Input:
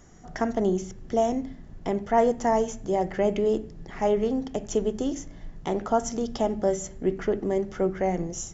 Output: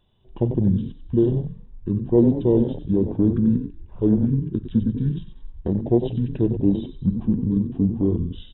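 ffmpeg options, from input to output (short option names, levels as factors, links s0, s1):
-filter_complex "[0:a]asplit=5[s0][s1][s2][s3][s4];[s1]adelay=94,afreqshift=64,volume=0.316[s5];[s2]adelay=188,afreqshift=128,volume=0.13[s6];[s3]adelay=282,afreqshift=192,volume=0.0531[s7];[s4]adelay=376,afreqshift=256,volume=0.0219[s8];[s0][s5][s6][s7][s8]amix=inputs=5:normalize=0,afwtdn=0.0447,asetrate=22696,aresample=44100,atempo=1.94306,volume=1.78"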